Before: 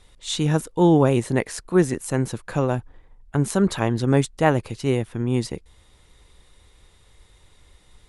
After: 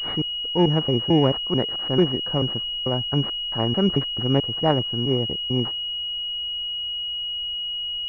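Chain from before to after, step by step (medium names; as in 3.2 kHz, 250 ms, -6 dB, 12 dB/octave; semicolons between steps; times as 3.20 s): slices played last to first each 220 ms, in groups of 2; class-D stage that switches slowly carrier 2.9 kHz; trim -1.5 dB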